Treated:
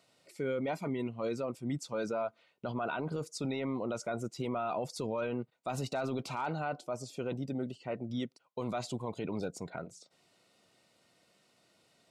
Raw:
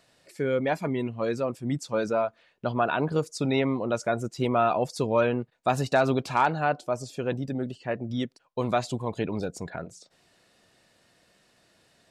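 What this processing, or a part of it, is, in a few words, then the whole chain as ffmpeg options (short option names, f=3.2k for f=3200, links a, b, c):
PA system with an anti-feedback notch: -af "highpass=110,asuperstop=centerf=1700:order=8:qfactor=7.4,alimiter=limit=-21.5dB:level=0:latency=1:release=10,volume=-5dB"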